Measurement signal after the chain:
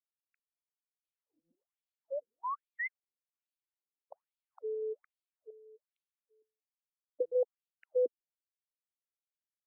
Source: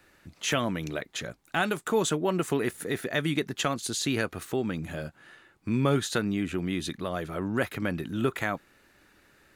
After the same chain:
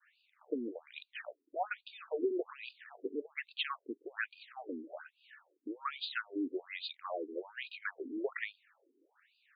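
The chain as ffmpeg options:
ffmpeg -i in.wav -af "agate=range=-33dB:threshold=-59dB:ratio=3:detection=peak,afftfilt=real='re*between(b*sr/1024,320*pow(3500/320,0.5+0.5*sin(2*PI*1.2*pts/sr))/1.41,320*pow(3500/320,0.5+0.5*sin(2*PI*1.2*pts/sr))*1.41)':imag='im*between(b*sr/1024,320*pow(3500/320,0.5+0.5*sin(2*PI*1.2*pts/sr))/1.41,320*pow(3500/320,0.5+0.5*sin(2*PI*1.2*pts/sr))*1.41)':win_size=1024:overlap=0.75,volume=-2.5dB" out.wav

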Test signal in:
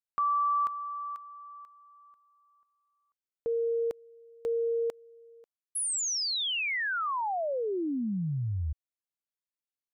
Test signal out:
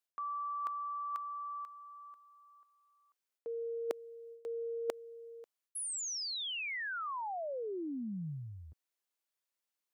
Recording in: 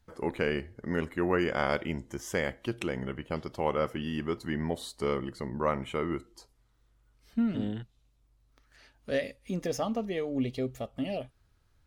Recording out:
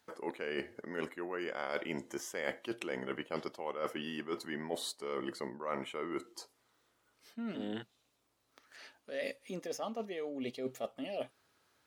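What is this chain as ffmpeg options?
ffmpeg -i in.wav -af "highpass=330,areverse,acompressor=threshold=-44dB:ratio=10:attack=50:release=247:knee=1:detection=peak,areverse,volume=5dB" out.wav

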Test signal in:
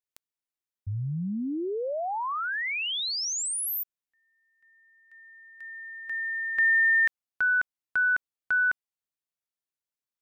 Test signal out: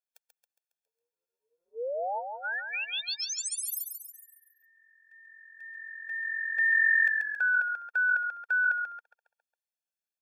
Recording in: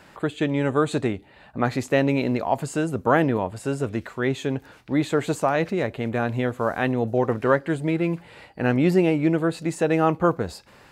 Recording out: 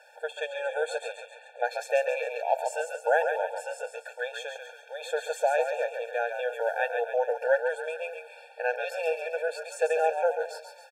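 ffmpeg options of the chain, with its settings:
ffmpeg -i in.wav -filter_complex "[0:a]asplit=7[link_01][link_02][link_03][link_04][link_05][link_06][link_07];[link_02]adelay=137,afreqshift=-44,volume=-6dB[link_08];[link_03]adelay=274,afreqshift=-88,volume=-11.8dB[link_09];[link_04]adelay=411,afreqshift=-132,volume=-17.7dB[link_10];[link_05]adelay=548,afreqshift=-176,volume=-23.5dB[link_11];[link_06]adelay=685,afreqshift=-220,volume=-29.4dB[link_12];[link_07]adelay=822,afreqshift=-264,volume=-35.2dB[link_13];[link_01][link_08][link_09][link_10][link_11][link_12][link_13]amix=inputs=7:normalize=0,afftfilt=real='re*eq(mod(floor(b*sr/1024/460),2),1)':imag='im*eq(mod(floor(b*sr/1024/460),2),1)':win_size=1024:overlap=0.75,volume=-2dB" out.wav

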